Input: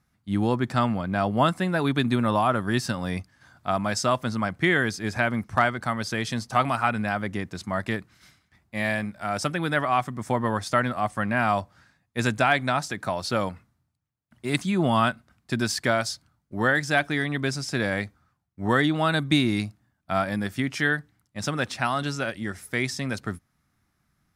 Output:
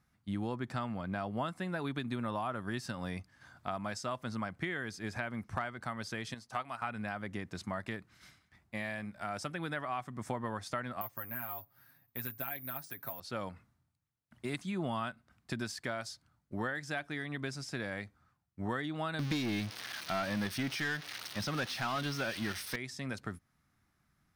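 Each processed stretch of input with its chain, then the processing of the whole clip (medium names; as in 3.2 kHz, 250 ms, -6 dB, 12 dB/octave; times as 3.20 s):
6.34–6.82 s: bass shelf 360 Hz -7 dB + upward expansion, over -36 dBFS
11.01–13.20 s: comb 7.4 ms, depth 67% + careless resampling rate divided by 3×, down filtered, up zero stuff
19.19–22.76 s: zero-crossing glitches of -19.5 dBFS + Savitzky-Golay filter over 15 samples + waveshaping leveller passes 3
whole clip: tilt shelf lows -5 dB, about 1.5 kHz; compression 3:1, threshold -36 dBFS; treble shelf 2.2 kHz -11 dB; trim +1 dB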